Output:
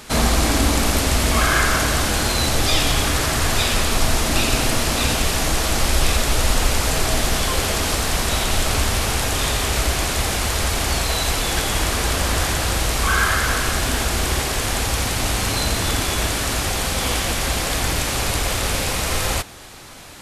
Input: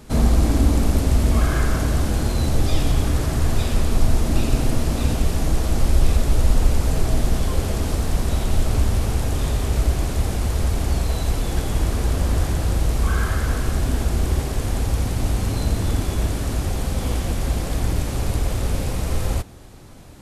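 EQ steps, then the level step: tilt shelf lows -7.5 dB, about 870 Hz; low shelf 270 Hz -5 dB; high shelf 5100 Hz -6 dB; +8.5 dB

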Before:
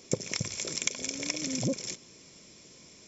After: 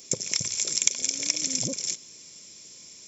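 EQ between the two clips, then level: high shelf 2700 Hz +11 dB; high shelf 6900 Hz +8.5 dB; -4.5 dB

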